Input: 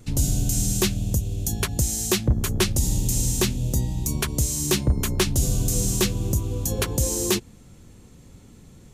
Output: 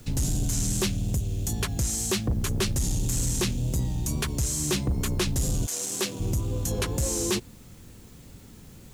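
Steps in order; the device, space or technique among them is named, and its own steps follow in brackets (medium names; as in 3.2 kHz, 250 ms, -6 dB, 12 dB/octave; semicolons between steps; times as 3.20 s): compact cassette (saturation -20.5 dBFS, distortion -11 dB; low-pass 12 kHz 12 dB/octave; wow and flutter; white noise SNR 31 dB); 5.65–6.19 s: high-pass 770 Hz -> 200 Hz 12 dB/octave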